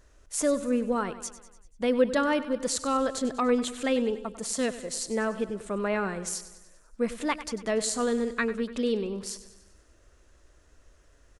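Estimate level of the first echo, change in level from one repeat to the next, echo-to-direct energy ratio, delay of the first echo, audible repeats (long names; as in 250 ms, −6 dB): −14.5 dB, −5.0 dB, −13.0 dB, 97 ms, 5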